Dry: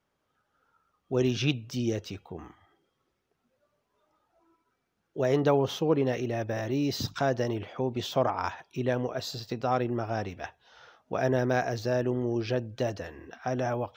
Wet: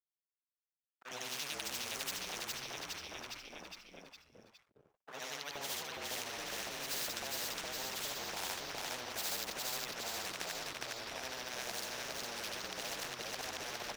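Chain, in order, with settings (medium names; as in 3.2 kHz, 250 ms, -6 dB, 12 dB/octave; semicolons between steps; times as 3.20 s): short-time spectra conjugated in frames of 194 ms; static phaser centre 330 Hz, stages 6; hysteresis with a dead band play -46.5 dBFS; reverse; compression 6:1, threshold -41 dBFS, peak gain reduction 15 dB; reverse; LFO high-pass saw up 1.8 Hz 700–1500 Hz; on a send: frequency-shifting echo 411 ms, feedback 48%, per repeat -53 Hz, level -3.5 dB; on the sum: spectrum-flattening compressor 4:1; trim +4.5 dB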